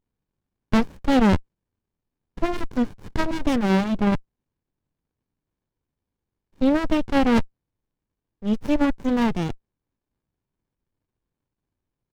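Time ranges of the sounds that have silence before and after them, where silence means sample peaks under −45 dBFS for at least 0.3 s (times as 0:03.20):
0:00.72–0:01.41
0:02.37–0:04.20
0:06.61–0:07.46
0:08.42–0:09.56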